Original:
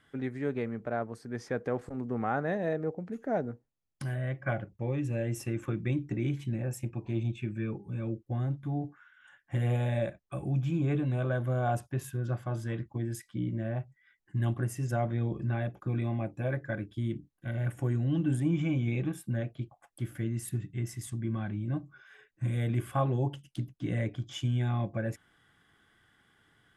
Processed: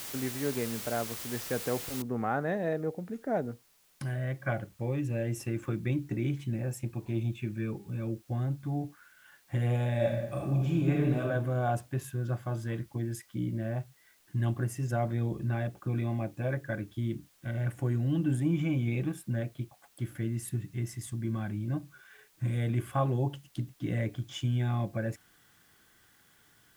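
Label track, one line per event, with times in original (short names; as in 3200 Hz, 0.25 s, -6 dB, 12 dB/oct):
2.020000	2.020000	noise floor step -41 dB -66 dB
9.950000	11.210000	reverb throw, RT60 1 s, DRR -1 dB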